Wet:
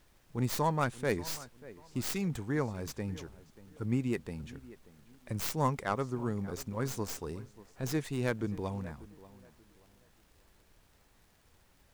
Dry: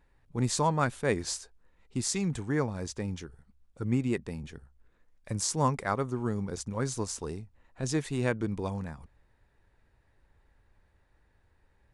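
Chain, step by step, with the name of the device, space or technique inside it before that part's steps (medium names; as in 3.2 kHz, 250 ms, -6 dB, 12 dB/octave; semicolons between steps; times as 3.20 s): tape echo 586 ms, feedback 32%, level -17 dB, low-pass 1.9 kHz; record under a worn stylus (tracing distortion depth 0.31 ms; crackle; pink noise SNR 31 dB); trim -3 dB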